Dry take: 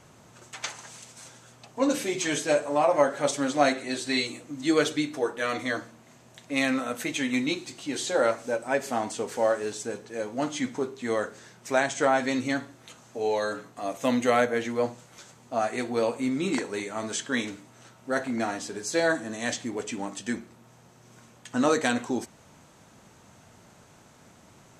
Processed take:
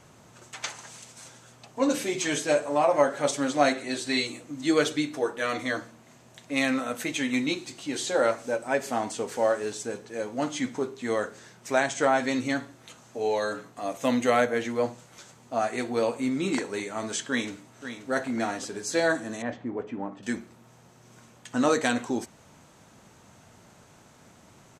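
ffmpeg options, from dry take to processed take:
-filter_complex "[0:a]asplit=2[s0][s1];[s1]afade=t=in:st=17.28:d=0.01,afade=t=out:st=18.11:d=0.01,aecho=0:1:530|1060|1590|2120|2650:0.298538|0.134342|0.060454|0.0272043|0.0122419[s2];[s0][s2]amix=inputs=2:normalize=0,asettb=1/sr,asplit=3[s3][s4][s5];[s3]atrim=end=19.424[s6];[s4]atrim=start=19.42:end=20.23,asetpts=PTS-STARTPTS,afade=t=in:d=0.004:c=qsin,afade=t=out:st=0.806:d=0.004:c=qsin,lowpass=1300[s7];[s5]atrim=start=20.226[s8];[s6][s7]acrossfade=d=0.004:c1=hsin:c2=qsin[s9];[s9][s8]acrossfade=d=0.004:c1=qsin:c2=hsin"

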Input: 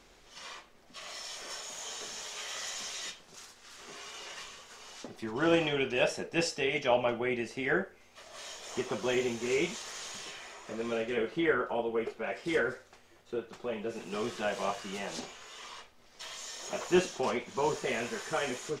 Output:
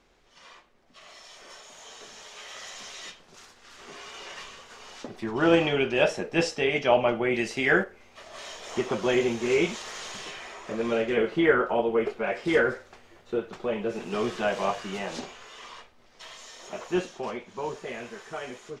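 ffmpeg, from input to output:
-filter_complex "[0:a]asettb=1/sr,asplit=3[s0][s1][s2];[s0]atrim=end=7.344[s3];[s1]atrim=start=7.34:end=7.84,asetpts=PTS-STARTPTS,afade=t=in:d=0.004:c=qsin,afade=t=out:st=0.496:d=0.004:c=qsin,highshelf=f=2400:g=10.5[s4];[s2]atrim=start=7.836[s5];[s3][s4]acrossfade=d=0.004:c1=hsin:c2=qsin[s6];[s6][s5]acrossfade=d=0.004:c1=qsin:c2=hsin,dynaudnorm=f=210:g=31:m=3.76,highshelf=f=5200:g=-9.5,volume=0.668"

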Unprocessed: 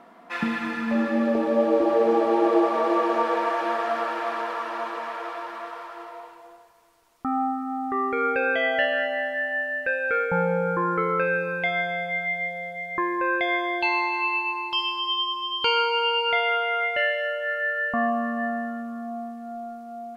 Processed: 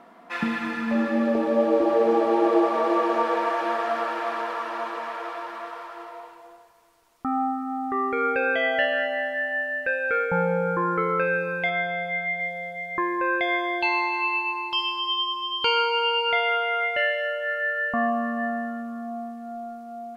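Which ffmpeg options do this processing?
-filter_complex "[0:a]asettb=1/sr,asplit=3[s0][s1][s2];[s0]atrim=end=11.694[s3];[s1]atrim=start=11.69:end=12.4,asetpts=PTS-STARTPTS,afade=t=in:d=0.004:c=qsin,afade=t=out:st=0.706:d=0.004:c=qsin,acrossover=split=4000[s4][s5];[s5]acompressor=threshold=0.00141:ratio=4:attack=1:release=60[s6];[s4][s6]amix=inputs=2:normalize=0[s7];[s2]atrim=start=12.396[s8];[s3][s7]acrossfade=d=0.004:c1=hsin:c2=qsin[s9];[s9][s8]acrossfade=d=0.004:c1=qsin:c2=hsin"

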